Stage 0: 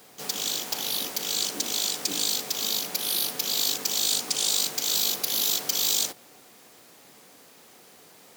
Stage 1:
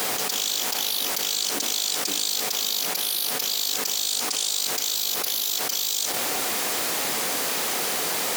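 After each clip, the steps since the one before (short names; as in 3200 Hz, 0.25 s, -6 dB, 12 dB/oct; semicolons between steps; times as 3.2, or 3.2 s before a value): low shelf 350 Hz -10 dB; fast leveller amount 100%; gain -3 dB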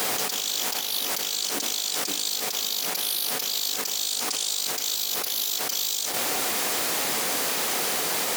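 limiter -15 dBFS, peak gain reduction 6 dB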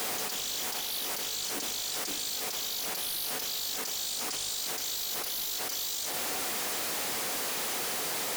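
soft clip -30.5 dBFS, distortion -7 dB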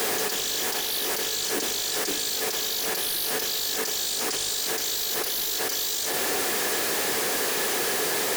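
small resonant body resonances 400/1700 Hz, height 9 dB, ringing for 25 ms; gain +6 dB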